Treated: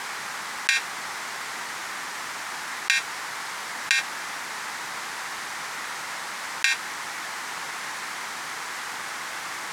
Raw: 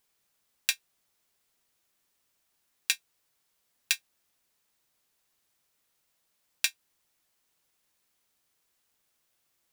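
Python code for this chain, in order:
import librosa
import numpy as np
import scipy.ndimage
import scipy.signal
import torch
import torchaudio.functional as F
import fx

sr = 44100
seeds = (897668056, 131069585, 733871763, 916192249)

y = fx.bandpass_edges(x, sr, low_hz=160.0, high_hz=7200.0)
y = fx.band_shelf(y, sr, hz=1300.0, db=10.5, octaves=1.7)
y = fx.env_flatten(y, sr, amount_pct=100)
y = F.gain(torch.from_numpy(y), 2.0).numpy()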